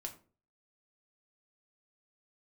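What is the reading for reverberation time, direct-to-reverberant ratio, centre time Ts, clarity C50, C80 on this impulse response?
0.40 s, 2.0 dB, 10 ms, 13.0 dB, 17.0 dB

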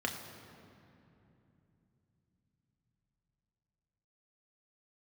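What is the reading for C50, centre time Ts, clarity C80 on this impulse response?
6.5 dB, 48 ms, 7.5 dB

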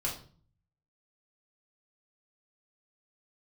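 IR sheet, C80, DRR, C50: 13.0 dB, -4.5 dB, 7.5 dB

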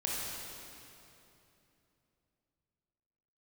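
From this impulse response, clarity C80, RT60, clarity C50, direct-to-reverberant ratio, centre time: -1.0 dB, 3.0 s, -3.0 dB, -5.0 dB, 167 ms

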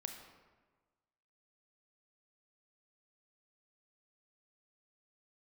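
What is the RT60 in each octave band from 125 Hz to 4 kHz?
1.5 s, 1.4 s, 1.4 s, 1.4 s, 1.1 s, 0.80 s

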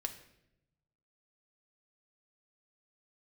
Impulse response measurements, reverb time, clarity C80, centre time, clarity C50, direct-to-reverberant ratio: 0.80 s, 14.0 dB, 11 ms, 11.0 dB, 4.5 dB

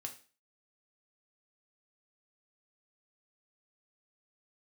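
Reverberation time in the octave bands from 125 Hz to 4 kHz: 0.35 s, 0.40 s, 0.35 s, 0.35 s, 0.40 s, 0.40 s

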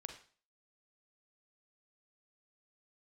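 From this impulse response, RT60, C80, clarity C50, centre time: 0.40 s, 12.0 dB, 7.5 dB, 17 ms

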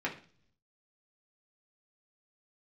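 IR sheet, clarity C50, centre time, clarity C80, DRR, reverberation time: 11.5 dB, 15 ms, 16.5 dB, -3.5 dB, 0.45 s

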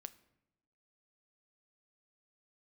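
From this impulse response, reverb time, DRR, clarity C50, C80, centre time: no single decay rate, 12.0 dB, 18.0 dB, 20.5 dB, 3 ms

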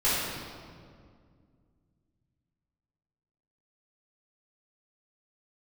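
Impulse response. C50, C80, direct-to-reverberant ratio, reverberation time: -2.5 dB, 0.0 dB, -12.0 dB, 2.1 s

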